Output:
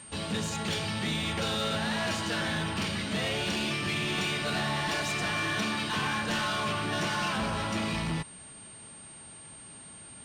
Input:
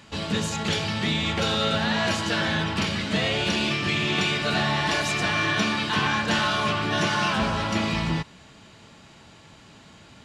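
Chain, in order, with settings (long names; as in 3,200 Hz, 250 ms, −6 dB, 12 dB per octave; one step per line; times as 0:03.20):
steady tone 8,700 Hz −43 dBFS
soft clipping −21.5 dBFS, distortion −14 dB
level −3.5 dB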